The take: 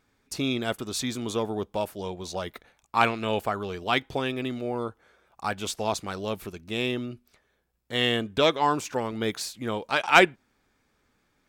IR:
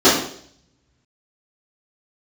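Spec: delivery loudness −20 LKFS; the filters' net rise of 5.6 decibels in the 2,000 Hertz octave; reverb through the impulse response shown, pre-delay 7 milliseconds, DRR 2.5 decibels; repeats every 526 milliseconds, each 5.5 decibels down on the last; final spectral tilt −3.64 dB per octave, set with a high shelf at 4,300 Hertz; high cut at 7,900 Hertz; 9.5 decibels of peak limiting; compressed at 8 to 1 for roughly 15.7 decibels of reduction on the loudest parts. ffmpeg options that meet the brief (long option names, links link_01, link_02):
-filter_complex "[0:a]lowpass=7900,equalizer=frequency=2000:width_type=o:gain=9,highshelf=frequency=4300:gain=-7,acompressor=threshold=-24dB:ratio=8,alimiter=limit=-20dB:level=0:latency=1,aecho=1:1:526|1052|1578|2104|2630|3156|3682:0.531|0.281|0.149|0.079|0.0419|0.0222|0.0118,asplit=2[link_01][link_02];[1:a]atrim=start_sample=2205,adelay=7[link_03];[link_02][link_03]afir=irnorm=-1:irlink=0,volume=-29dB[link_04];[link_01][link_04]amix=inputs=2:normalize=0,volume=9dB"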